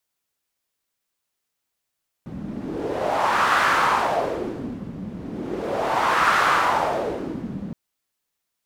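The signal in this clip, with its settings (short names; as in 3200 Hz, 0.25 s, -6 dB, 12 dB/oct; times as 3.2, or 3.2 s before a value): wind-like swept noise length 5.47 s, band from 190 Hz, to 1300 Hz, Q 2.8, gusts 2, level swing 15 dB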